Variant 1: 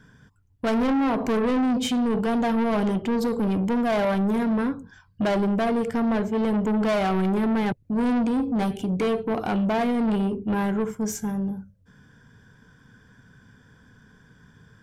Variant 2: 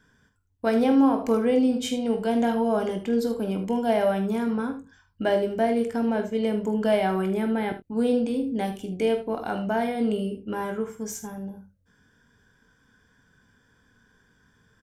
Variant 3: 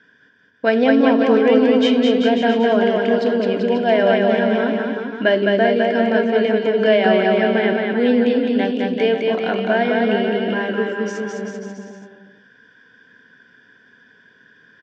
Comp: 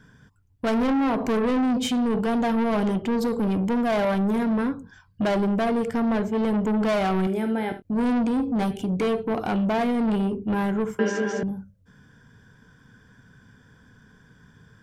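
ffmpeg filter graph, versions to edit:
-filter_complex "[0:a]asplit=3[a][b][c];[a]atrim=end=7.272[d];[1:a]atrim=start=7.268:end=7.852[e];[b]atrim=start=7.848:end=10.992[f];[2:a]atrim=start=10.988:end=11.432[g];[c]atrim=start=11.428[h];[d][e]acrossfade=d=0.004:c1=hsin:c2=hsin[i];[i][f]acrossfade=d=0.004:c1=hsin:c2=hsin[j];[j][g]acrossfade=d=0.004:c1=hsin:c2=hsin[k];[k][h]acrossfade=d=0.004:c1=hsin:c2=hsin"

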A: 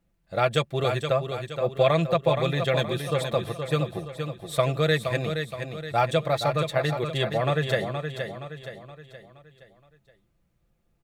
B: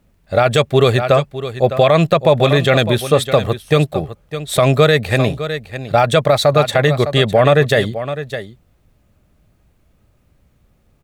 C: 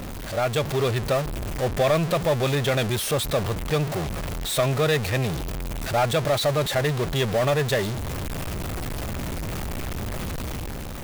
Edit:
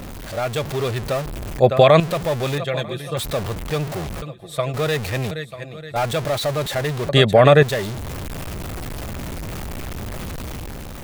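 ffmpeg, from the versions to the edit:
-filter_complex "[1:a]asplit=2[a][b];[0:a]asplit=3[c][d][e];[2:a]asplit=6[f][g][h][i][j][k];[f]atrim=end=1.592[l];[a]atrim=start=1.588:end=2.002[m];[g]atrim=start=1.998:end=2.582[n];[c]atrim=start=2.578:end=3.172[o];[h]atrim=start=3.168:end=4.222[p];[d]atrim=start=4.218:end=4.742[q];[i]atrim=start=4.738:end=5.312[r];[e]atrim=start=5.308:end=5.962[s];[j]atrim=start=5.958:end=7.092[t];[b]atrim=start=7.088:end=7.632[u];[k]atrim=start=7.628[v];[l][m]acrossfade=d=0.004:c1=hsin:c2=hsin[w];[w][n]acrossfade=d=0.004:c1=hsin:c2=hsin[x];[x][o]acrossfade=d=0.004:c1=hsin:c2=hsin[y];[y][p]acrossfade=d=0.004:c1=hsin:c2=hsin[z];[z][q]acrossfade=d=0.004:c1=hsin:c2=hsin[aa];[aa][r]acrossfade=d=0.004:c1=hsin:c2=hsin[ab];[ab][s]acrossfade=d=0.004:c1=hsin:c2=hsin[ac];[ac][t]acrossfade=d=0.004:c1=hsin:c2=hsin[ad];[ad][u]acrossfade=d=0.004:c1=hsin:c2=hsin[ae];[ae][v]acrossfade=d=0.004:c1=hsin:c2=hsin"

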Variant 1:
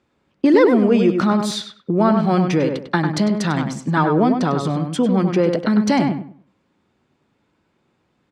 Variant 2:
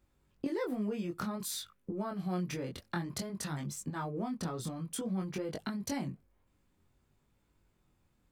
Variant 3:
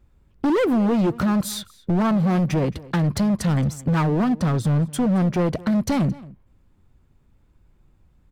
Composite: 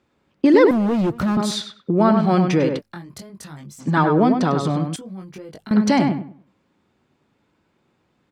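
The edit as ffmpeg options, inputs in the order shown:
-filter_complex "[1:a]asplit=2[a][b];[0:a]asplit=4[c][d][e][f];[c]atrim=end=0.712[g];[2:a]atrim=start=0.708:end=1.372[h];[d]atrim=start=1.368:end=2.82[i];[a]atrim=start=2.78:end=3.82[j];[e]atrim=start=3.78:end=4.962[k];[b]atrim=start=4.958:end=5.712[l];[f]atrim=start=5.708[m];[g][h]acrossfade=d=0.004:c1=hsin:c2=hsin[n];[n][i]acrossfade=d=0.004:c1=hsin:c2=hsin[o];[o][j]acrossfade=d=0.04:c1=tri:c2=tri[p];[p][k]acrossfade=d=0.04:c1=tri:c2=tri[q];[q][l]acrossfade=d=0.004:c1=hsin:c2=hsin[r];[r][m]acrossfade=d=0.004:c1=hsin:c2=hsin"

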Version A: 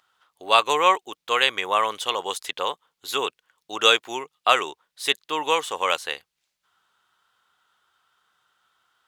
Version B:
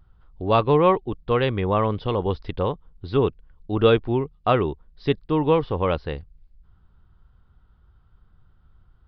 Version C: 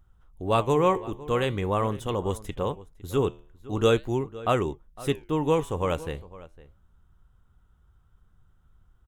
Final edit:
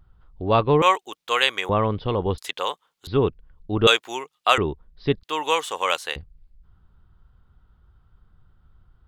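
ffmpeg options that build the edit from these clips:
-filter_complex "[0:a]asplit=4[a][b][c][d];[1:a]asplit=5[e][f][g][h][i];[e]atrim=end=0.822[j];[a]atrim=start=0.818:end=1.692[k];[f]atrim=start=1.688:end=2.382[l];[b]atrim=start=2.378:end=3.072[m];[g]atrim=start=3.068:end=3.872[n];[c]atrim=start=3.868:end=4.582[o];[h]atrim=start=4.578:end=5.232[p];[d]atrim=start=5.228:end=6.162[q];[i]atrim=start=6.158[r];[j][k]acrossfade=d=0.004:c1=hsin:c2=hsin[s];[s][l]acrossfade=d=0.004:c1=hsin:c2=hsin[t];[t][m]acrossfade=d=0.004:c1=hsin:c2=hsin[u];[u][n]acrossfade=d=0.004:c1=hsin:c2=hsin[v];[v][o]acrossfade=d=0.004:c1=hsin:c2=hsin[w];[w][p]acrossfade=d=0.004:c1=hsin:c2=hsin[x];[x][q]acrossfade=d=0.004:c1=hsin:c2=hsin[y];[y][r]acrossfade=d=0.004:c1=hsin:c2=hsin"

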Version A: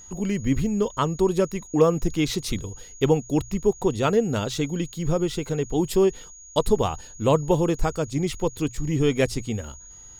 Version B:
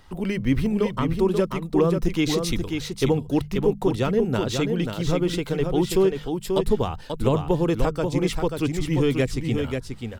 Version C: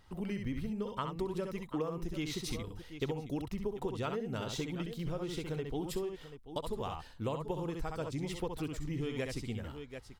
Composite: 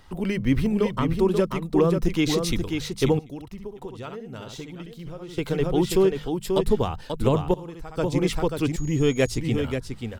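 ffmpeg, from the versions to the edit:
-filter_complex "[2:a]asplit=2[a][b];[1:a]asplit=4[c][d][e][f];[c]atrim=end=3.192[g];[a]atrim=start=3.188:end=5.382[h];[d]atrim=start=5.378:end=7.542[i];[b]atrim=start=7.538:end=7.972[j];[e]atrim=start=7.968:end=8.762[k];[0:a]atrim=start=8.758:end=9.382[l];[f]atrim=start=9.378[m];[g][h]acrossfade=d=0.004:c1=hsin:c2=hsin[n];[n][i]acrossfade=d=0.004:c1=hsin:c2=hsin[o];[o][j]acrossfade=d=0.004:c1=hsin:c2=hsin[p];[p][k]acrossfade=d=0.004:c1=hsin:c2=hsin[q];[q][l]acrossfade=d=0.004:c1=hsin:c2=hsin[r];[r][m]acrossfade=d=0.004:c1=hsin:c2=hsin"

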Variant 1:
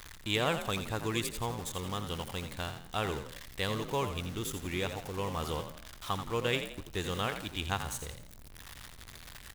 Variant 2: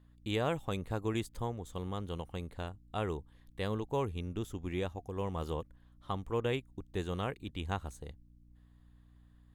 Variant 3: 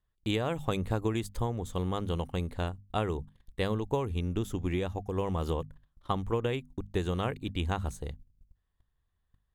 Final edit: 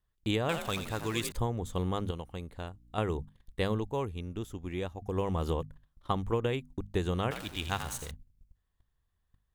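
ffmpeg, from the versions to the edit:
-filter_complex "[0:a]asplit=2[a][b];[1:a]asplit=2[c][d];[2:a]asplit=5[e][f][g][h][i];[e]atrim=end=0.492[j];[a]atrim=start=0.488:end=1.322[k];[f]atrim=start=1.318:end=2.112[l];[c]atrim=start=2.108:end=2.982[m];[g]atrim=start=2.978:end=3.912[n];[d]atrim=start=3.908:end=5.022[o];[h]atrim=start=5.018:end=7.312[p];[b]atrim=start=7.308:end=8.112[q];[i]atrim=start=8.108[r];[j][k]acrossfade=d=0.004:c1=hsin:c2=hsin[s];[s][l]acrossfade=d=0.004:c1=hsin:c2=hsin[t];[t][m]acrossfade=d=0.004:c1=hsin:c2=hsin[u];[u][n]acrossfade=d=0.004:c1=hsin:c2=hsin[v];[v][o]acrossfade=d=0.004:c1=hsin:c2=hsin[w];[w][p]acrossfade=d=0.004:c1=hsin:c2=hsin[x];[x][q]acrossfade=d=0.004:c1=hsin:c2=hsin[y];[y][r]acrossfade=d=0.004:c1=hsin:c2=hsin"

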